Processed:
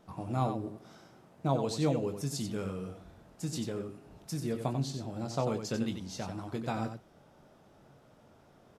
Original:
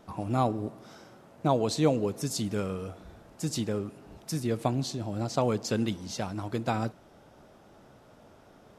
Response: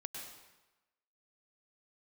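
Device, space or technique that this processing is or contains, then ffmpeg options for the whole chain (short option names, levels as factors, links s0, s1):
slapback doubling: -filter_complex "[0:a]asplit=3[s0][s1][s2];[s1]adelay=22,volume=0.376[s3];[s2]adelay=92,volume=0.422[s4];[s0][s3][s4]amix=inputs=3:normalize=0,equalizer=f=150:t=o:w=0.6:g=4.5,volume=0.473"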